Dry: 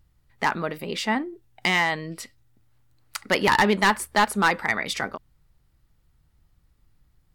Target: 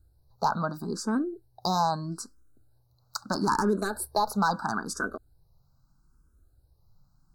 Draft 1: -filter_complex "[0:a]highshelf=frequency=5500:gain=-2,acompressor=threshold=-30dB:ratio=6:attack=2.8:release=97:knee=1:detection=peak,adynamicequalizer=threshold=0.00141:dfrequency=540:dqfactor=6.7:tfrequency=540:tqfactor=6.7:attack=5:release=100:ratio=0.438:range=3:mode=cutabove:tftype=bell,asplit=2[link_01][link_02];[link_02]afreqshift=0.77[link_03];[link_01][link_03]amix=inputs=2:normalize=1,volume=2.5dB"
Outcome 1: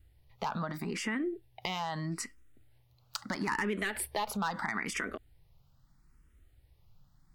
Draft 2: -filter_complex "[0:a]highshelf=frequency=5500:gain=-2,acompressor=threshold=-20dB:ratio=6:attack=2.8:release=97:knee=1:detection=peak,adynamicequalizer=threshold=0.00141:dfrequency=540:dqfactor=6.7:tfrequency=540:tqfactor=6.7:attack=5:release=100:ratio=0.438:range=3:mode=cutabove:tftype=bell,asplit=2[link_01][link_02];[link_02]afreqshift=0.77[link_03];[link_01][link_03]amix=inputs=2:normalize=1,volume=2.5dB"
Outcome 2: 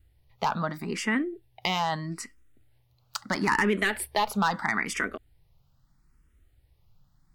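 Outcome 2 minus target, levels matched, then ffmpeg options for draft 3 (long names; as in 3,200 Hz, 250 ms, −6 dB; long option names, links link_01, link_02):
2,000 Hz band +6.5 dB
-filter_complex "[0:a]asuperstop=centerf=2500:order=20:qfactor=1.1,highshelf=frequency=5500:gain=-2,acompressor=threshold=-20dB:ratio=6:attack=2.8:release=97:knee=1:detection=peak,adynamicequalizer=threshold=0.00141:dfrequency=540:dqfactor=6.7:tfrequency=540:tqfactor=6.7:attack=5:release=100:ratio=0.438:range=3:mode=cutabove:tftype=bell,asplit=2[link_01][link_02];[link_02]afreqshift=0.77[link_03];[link_01][link_03]amix=inputs=2:normalize=1,volume=2.5dB"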